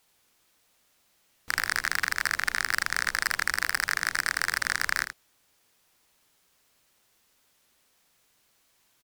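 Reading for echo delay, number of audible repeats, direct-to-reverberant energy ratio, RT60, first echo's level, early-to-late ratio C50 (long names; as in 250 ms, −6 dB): 80 ms, 1, no reverb audible, no reverb audible, −9.5 dB, no reverb audible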